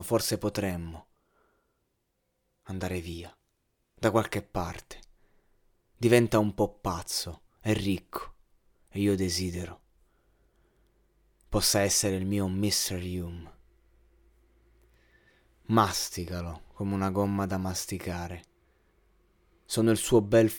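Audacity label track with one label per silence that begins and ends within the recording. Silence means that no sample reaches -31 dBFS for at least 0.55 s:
0.870000	2.700000	silence
3.200000	4.030000	silence
4.920000	6.030000	silence
8.220000	8.960000	silence
9.650000	11.530000	silence
13.280000	15.700000	silence
18.350000	19.710000	silence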